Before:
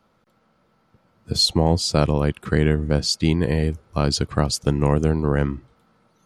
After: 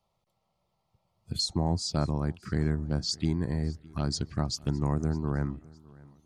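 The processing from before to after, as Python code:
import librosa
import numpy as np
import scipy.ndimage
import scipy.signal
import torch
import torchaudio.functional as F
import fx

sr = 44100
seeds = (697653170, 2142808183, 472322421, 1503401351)

p1 = fx.peak_eq(x, sr, hz=480.0, db=-10.0, octaves=0.47)
p2 = fx.env_phaser(p1, sr, low_hz=260.0, high_hz=2900.0, full_db=-17.0)
p3 = p2 + fx.echo_feedback(p2, sr, ms=610, feedback_pct=32, wet_db=-23.0, dry=0)
y = F.gain(torch.from_numpy(p3), -8.0).numpy()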